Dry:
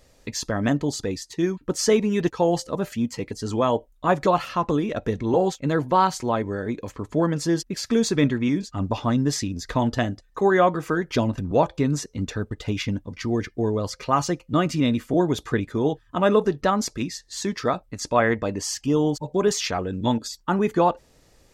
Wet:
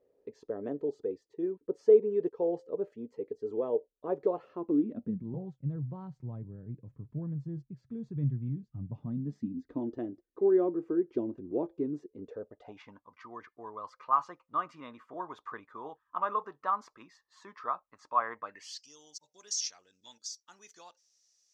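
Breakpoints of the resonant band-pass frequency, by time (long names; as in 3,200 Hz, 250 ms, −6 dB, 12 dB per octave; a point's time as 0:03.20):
resonant band-pass, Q 6.3
0:04.48 430 Hz
0:05.47 130 Hz
0:08.84 130 Hz
0:09.92 350 Hz
0:12.08 350 Hz
0:13.00 1,100 Hz
0:18.43 1,100 Hz
0:18.85 5,800 Hz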